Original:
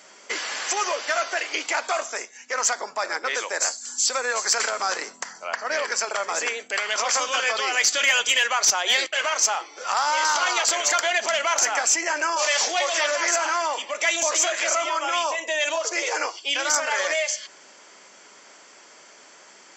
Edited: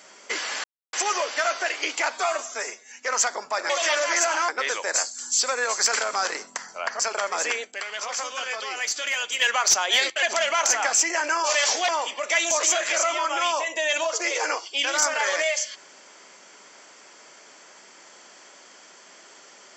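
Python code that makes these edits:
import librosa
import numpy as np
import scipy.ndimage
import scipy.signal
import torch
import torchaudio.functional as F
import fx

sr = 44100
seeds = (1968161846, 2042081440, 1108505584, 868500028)

y = fx.edit(x, sr, fx.insert_silence(at_s=0.64, length_s=0.29),
    fx.stretch_span(start_s=1.85, length_s=0.51, factor=1.5),
    fx.cut(start_s=5.66, length_s=0.3),
    fx.clip_gain(start_s=6.61, length_s=1.77, db=-7.0),
    fx.cut(start_s=9.19, length_s=1.96),
    fx.move(start_s=12.81, length_s=0.79, to_s=3.15), tone=tone)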